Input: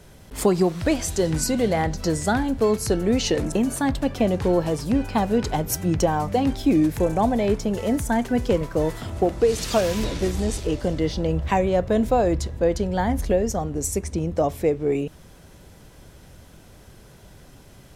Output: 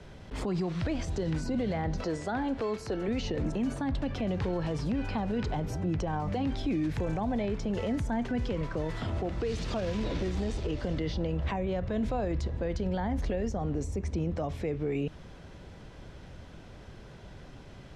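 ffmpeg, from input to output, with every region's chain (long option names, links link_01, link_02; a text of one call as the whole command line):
ffmpeg -i in.wav -filter_complex "[0:a]asettb=1/sr,asplit=3[link_01][link_02][link_03];[link_01]atrim=end=2.004[link_04];[link_02]atrim=start=2:end=3.08,asetpts=PTS-STARTPTS,afade=type=in:duration=0.004:curve=qsin,afade=type=out:start_time=1.076:duration=0.004:curve=qsin,bass=frequency=250:gain=-13,treble=frequency=4000:gain=-2,acompressor=mode=upward:threshold=-27dB:ratio=2.5:attack=3.2:release=140:knee=2.83:detection=peak[link_05];[link_03]atrim=start=3.076[link_06];[link_04][link_05]acrossfade=duration=0.004:curve1=hsin:curve2=qsin[link_07];[link_07][link_06]acrossfade=duration=0.004:curve1=qsin:curve2=hsin,acrossover=split=220|1100[link_08][link_09][link_10];[link_08]acompressor=threshold=-27dB:ratio=4[link_11];[link_09]acompressor=threshold=-29dB:ratio=4[link_12];[link_10]acompressor=threshold=-38dB:ratio=4[link_13];[link_11][link_12][link_13]amix=inputs=3:normalize=0,alimiter=limit=-23dB:level=0:latency=1:release=33,lowpass=4100" out.wav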